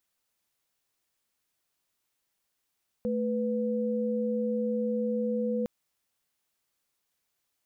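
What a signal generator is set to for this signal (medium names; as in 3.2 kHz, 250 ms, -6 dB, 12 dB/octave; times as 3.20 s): chord A3/B4 sine, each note -29 dBFS 2.61 s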